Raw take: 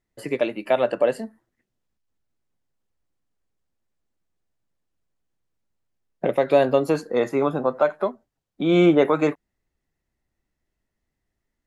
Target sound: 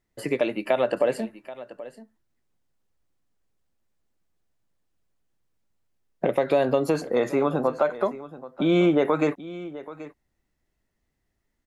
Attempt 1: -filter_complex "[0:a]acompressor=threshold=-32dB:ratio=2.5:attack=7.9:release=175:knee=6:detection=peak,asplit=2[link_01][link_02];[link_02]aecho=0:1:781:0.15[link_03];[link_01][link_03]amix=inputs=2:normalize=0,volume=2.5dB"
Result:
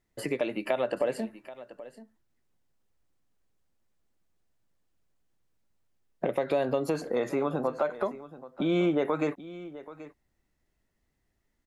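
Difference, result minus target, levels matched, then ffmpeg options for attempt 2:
downward compressor: peak gain reduction +6 dB
-filter_complex "[0:a]acompressor=threshold=-22dB:ratio=2.5:attack=7.9:release=175:knee=6:detection=peak,asplit=2[link_01][link_02];[link_02]aecho=0:1:781:0.15[link_03];[link_01][link_03]amix=inputs=2:normalize=0,volume=2.5dB"

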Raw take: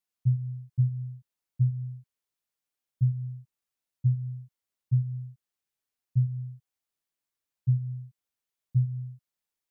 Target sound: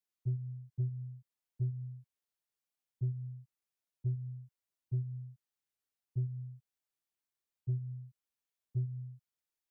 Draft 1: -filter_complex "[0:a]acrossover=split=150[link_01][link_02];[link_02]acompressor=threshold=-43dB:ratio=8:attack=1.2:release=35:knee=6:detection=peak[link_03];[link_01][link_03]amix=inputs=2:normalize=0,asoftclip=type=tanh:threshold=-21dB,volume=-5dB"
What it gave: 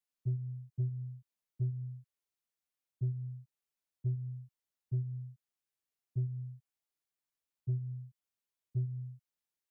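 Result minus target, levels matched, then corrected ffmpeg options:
downward compressor: peak gain reduction −9 dB
-filter_complex "[0:a]acrossover=split=150[link_01][link_02];[link_02]acompressor=threshold=-53.5dB:ratio=8:attack=1.2:release=35:knee=6:detection=peak[link_03];[link_01][link_03]amix=inputs=2:normalize=0,asoftclip=type=tanh:threshold=-21dB,volume=-5dB"

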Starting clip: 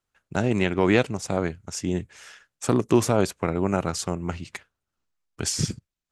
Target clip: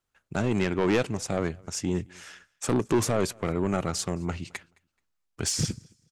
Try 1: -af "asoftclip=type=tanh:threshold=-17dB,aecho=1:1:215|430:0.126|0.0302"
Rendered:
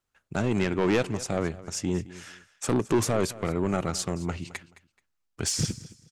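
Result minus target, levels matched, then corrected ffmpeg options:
echo-to-direct +9.5 dB
-af "asoftclip=type=tanh:threshold=-17dB,aecho=1:1:215|430:0.0422|0.0101"

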